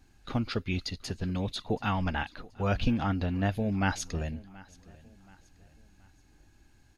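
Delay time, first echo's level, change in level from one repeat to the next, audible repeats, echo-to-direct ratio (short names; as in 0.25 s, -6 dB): 0.728 s, -22.0 dB, -7.5 dB, 2, -21.0 dB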